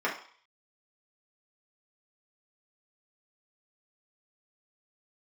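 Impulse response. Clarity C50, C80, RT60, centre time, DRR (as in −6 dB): 8.0 dB, 12.5 dB, 0.50 s, 25 ms, −5.0 dB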